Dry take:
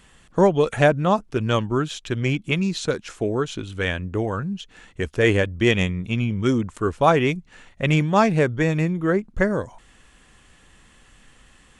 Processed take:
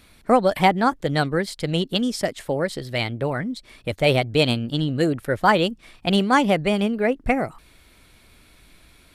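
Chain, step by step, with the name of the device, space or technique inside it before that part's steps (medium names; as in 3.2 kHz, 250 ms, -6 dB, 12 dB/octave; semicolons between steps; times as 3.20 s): nightcore (tape speed +29%)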